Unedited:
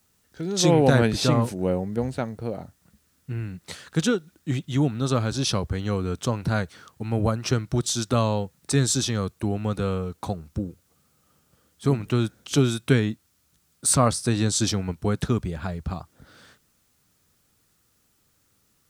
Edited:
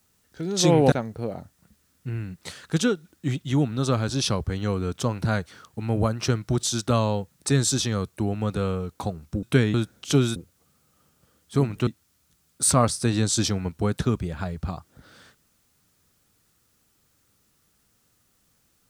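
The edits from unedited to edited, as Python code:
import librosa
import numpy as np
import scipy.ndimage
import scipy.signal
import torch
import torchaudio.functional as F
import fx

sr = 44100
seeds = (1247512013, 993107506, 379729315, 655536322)

y = fx.edit(x, sr, fx.cut(start_s=0.92, length_s=1.23),
    fx.swap(start_s=10.66, length_s=1.51, other_s=12.79, other_length_s=0.31), tone=tone)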